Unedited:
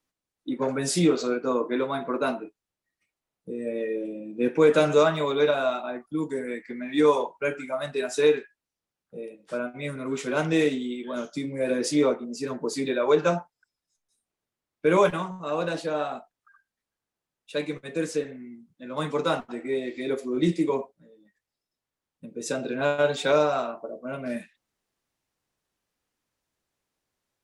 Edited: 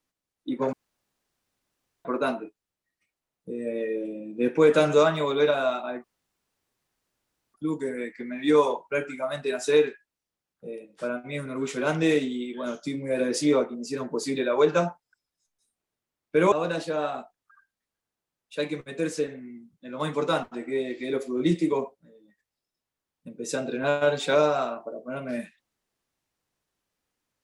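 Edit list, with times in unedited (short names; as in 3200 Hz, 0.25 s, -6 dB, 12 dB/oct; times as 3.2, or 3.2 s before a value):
0.73–2.05 room tone
6.04 insert room tone 1.50 s
15.02–15.49 cut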